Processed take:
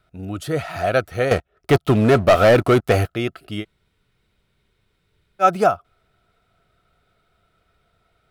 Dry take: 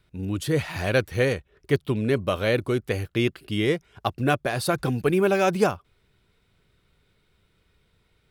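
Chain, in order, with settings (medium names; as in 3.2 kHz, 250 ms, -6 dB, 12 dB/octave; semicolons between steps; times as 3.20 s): small resonant body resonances 690/1300 Hz, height 17 dB, ringing for 35 ms; 1.31–3.07 s: waveshaping leveller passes 3; 3.62–5.42 s: room tone, crossfade 0.06 s; trim -1.5 dB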